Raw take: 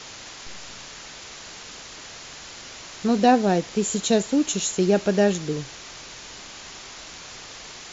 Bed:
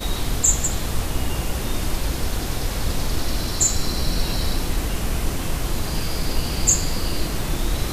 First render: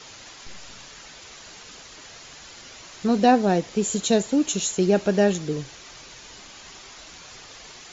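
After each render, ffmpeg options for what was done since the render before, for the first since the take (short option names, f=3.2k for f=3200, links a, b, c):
-af "afftdn=nr=6:nf=-41"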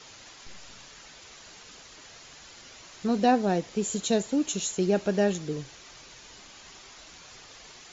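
-af "volume=-5dB"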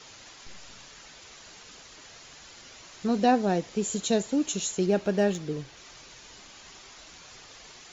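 -filter_complex "[0:a]asettb=1/sr,asplit=3[a][b][c];[a]atrim=end=4.864[d];[b]atrim=start=4.86:end=5.77,asetpts=PTS-STARTPTS,afade=t=in:d=0.004:c=qsin,afade=t=out:st=0.906:d=0.004:c=qsin,adynamicsmooth=sensitivity=7.5:basefreq=6.5k[e];[c]atrim=start=5.766[f];[d][e]acrossfade=d=0.004:c1=hsin:c2=qsin[g];[g][f]acrossfade=d=0.004:c1=qsin:c2=hsin"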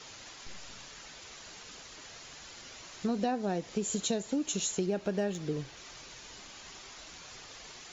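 -af "acompressor=threshold=-28dB:ratio=6"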